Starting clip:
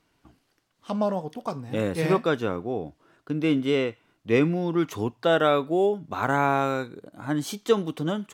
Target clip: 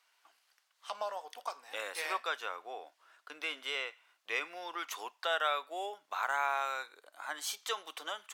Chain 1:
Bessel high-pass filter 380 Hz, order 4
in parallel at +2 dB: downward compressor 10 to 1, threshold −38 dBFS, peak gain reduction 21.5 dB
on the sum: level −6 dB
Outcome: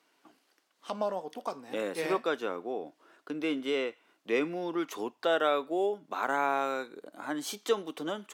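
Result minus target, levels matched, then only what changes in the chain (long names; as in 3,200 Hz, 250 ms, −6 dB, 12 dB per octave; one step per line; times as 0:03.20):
500 Hz band +7.0 dB
change: Bessel high-pass filter 1,100 Hz, order 4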